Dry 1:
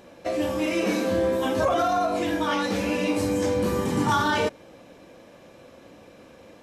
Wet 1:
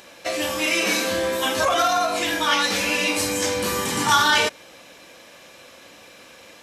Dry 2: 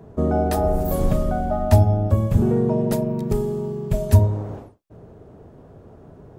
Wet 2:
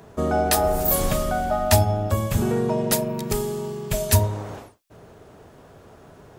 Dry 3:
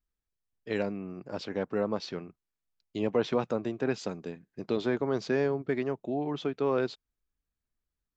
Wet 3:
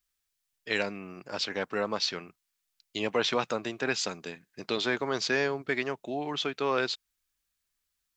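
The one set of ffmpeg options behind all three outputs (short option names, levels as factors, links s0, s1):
-af "tiltshelf=f=970:g=-9.5,volume=1.58"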